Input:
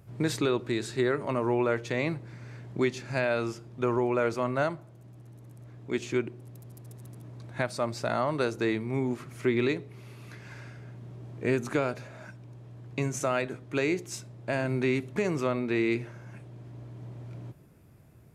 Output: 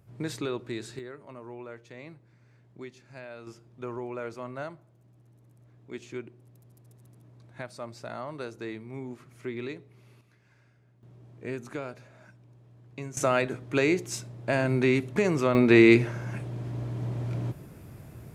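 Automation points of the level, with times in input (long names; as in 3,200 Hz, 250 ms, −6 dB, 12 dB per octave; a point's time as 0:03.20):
−5.5 dB
from 0:00.99 −16 dB
from 0:03.47 −9.5 dB
from 0:10.21 −18 dB
from 0:11.03 −8.5 dB
from 0:13.17 +3.5 dB
from 0:15.55 +10.5 dB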